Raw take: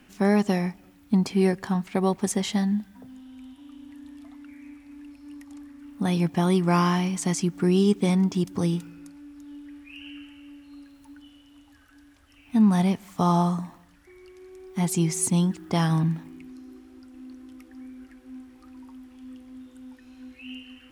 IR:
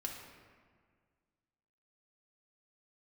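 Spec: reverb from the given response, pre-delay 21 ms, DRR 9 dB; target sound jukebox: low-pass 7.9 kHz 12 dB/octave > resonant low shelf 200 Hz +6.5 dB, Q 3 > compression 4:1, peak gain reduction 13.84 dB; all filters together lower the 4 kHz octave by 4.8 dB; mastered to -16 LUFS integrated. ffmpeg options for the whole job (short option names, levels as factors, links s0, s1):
-filter_complex "[0:a]equalizer=f=4000:t=o:g=-6.5,asplit=2[s0][s1];[1:a]atrim=start_sample=2205,adelay=21[s2];[s1][s2]afir=irnorm=-1:irlink=0,volume=0.376[s3];[s0][s3]amix=inputs=2:normalize=0,lowpass=7900,lowshelf=f=200:t=q:w=3:g=6.5,acompressor=threshold=0.0501:ratio=4,volume=4.47"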